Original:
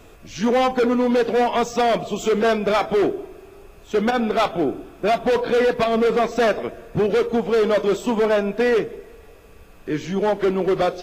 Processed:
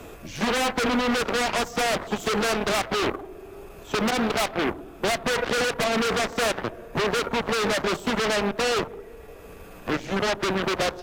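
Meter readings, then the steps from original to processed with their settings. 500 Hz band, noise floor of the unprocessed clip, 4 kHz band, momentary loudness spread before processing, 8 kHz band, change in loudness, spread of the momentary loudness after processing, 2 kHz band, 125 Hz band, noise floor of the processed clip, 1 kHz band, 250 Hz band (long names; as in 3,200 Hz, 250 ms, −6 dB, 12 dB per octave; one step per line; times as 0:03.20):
−8.0 dB, −46 dBFS, +4.5 dB, 8 LU, can't be measured, −4.5 dB, 15 LU, +1.5 dB, −2.5 dB, −44 dBFS, −3.5 dB, −5.0 dB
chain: parametric band 4,700 Hz −5 dB 2.2 octaves
harmonic generator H 3 −8 dB, 5 −7 dB, 7 −8 dB, 8 −25 dB, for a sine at −12.5 dBFS
multiband upward and downward compressor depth 40%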